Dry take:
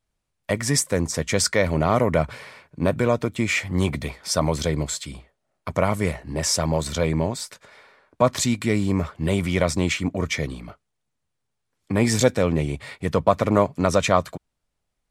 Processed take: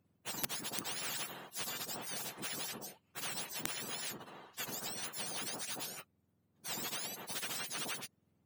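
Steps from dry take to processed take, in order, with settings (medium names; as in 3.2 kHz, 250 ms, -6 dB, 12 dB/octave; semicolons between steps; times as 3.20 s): spectrum inverted on a logarithmic axis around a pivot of 1.3 kHz; plain phase-vocoder stretch 0.56×; in parallel at -6 dB: integer overflow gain 8 dB; on the sum: spectrum-flattening compressor 4:1; trim -5 dB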